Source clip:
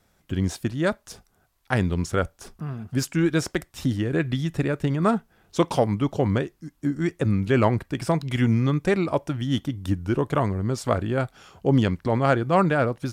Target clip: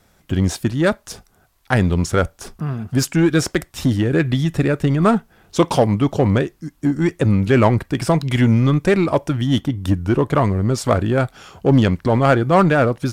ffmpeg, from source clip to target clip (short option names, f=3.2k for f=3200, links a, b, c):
-filter_complex "[0:a]asplit=2[a][b];[b]volume=23dB,asoftclip=hard,volume=-23dB,volume=-4.5dB[c];[a][c]amix=inputs=2:normalize=0,asplit=3[d][e][f];[d]afade=t=out:st=9.6:d=0.02[g];[e]adynamicequalizer=threshold=0.00562:dfrequency=3400:dqfactor=0.7:tfrequency=3400:tqfactor=0.7:attack=5:release=100:ratio=0.375:range=2.5:mode=cutabove:tftype=highshelf,afade=t=in:st=9.6:d=0.02,afade=t=out:st=10.42:d=0.02[h];[f]afade=t=in:st=10.42:d=0.02[i];[g][h][i]amix=inputs=3:normalize=0,volume=4dB"